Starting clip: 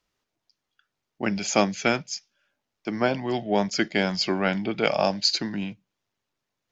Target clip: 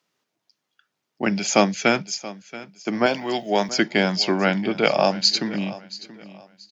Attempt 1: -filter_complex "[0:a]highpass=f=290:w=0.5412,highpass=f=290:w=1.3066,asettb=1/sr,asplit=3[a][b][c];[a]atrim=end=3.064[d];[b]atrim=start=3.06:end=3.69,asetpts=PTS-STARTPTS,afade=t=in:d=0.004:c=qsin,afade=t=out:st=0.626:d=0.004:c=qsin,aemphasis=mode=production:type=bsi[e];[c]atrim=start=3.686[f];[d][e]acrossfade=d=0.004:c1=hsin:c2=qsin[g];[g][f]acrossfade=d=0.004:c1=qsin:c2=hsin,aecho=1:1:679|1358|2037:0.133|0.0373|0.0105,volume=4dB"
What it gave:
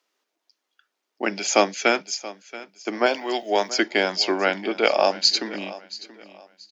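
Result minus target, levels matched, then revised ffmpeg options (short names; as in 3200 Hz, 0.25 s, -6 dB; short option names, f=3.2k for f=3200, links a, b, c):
125 Hz band -13.5 dB
-filter_complex "[0:a]highpass=f=130:w=0.5412,highpass=f=130:w=1.3066,asettb=1/sr,asplit=3[a][b][c];[a]atrim=end=3.064[d];[b]atrim=start=3.06:end=3.69,asetpts=PTS-STARTPTS,afade=t=in:d=0.004:c=qsin,afade=t=out:st=0.626:d=0.004:c=qsin,aemphasis=mode=production:type=bsi[e];[c]atrim=start=3.686[f];[d][e]acrossfade=d=0.004:c1=hsin:c2=qsin[g];[g][f]acrossfade=d=0.004:c1=qsin:c2=hsin,aecho=1:1:679|1358|2037:0.133|0.0373|0.0105,volume=4dB"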